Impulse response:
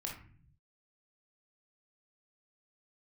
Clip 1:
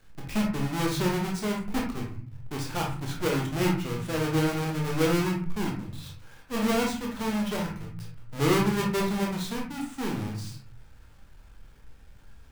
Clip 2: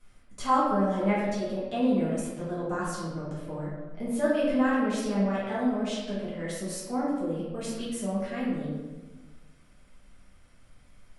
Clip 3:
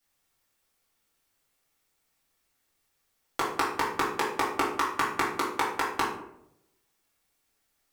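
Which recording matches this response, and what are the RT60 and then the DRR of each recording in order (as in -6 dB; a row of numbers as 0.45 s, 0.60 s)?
1; 0.50 s, 1.3 s, 0.80 s; -1.0 dB, -10.0 dB, -7.5 dB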